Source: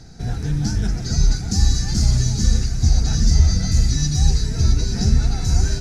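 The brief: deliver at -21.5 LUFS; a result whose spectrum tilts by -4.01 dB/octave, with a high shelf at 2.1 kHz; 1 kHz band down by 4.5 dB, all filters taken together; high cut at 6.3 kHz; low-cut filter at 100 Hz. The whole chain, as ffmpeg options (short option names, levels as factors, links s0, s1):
-af "highpass=100,lowpass=6300,equalizer=f=1000:t=o:g=-8,highshelf=f=2100:g=4.5,volume=1.19"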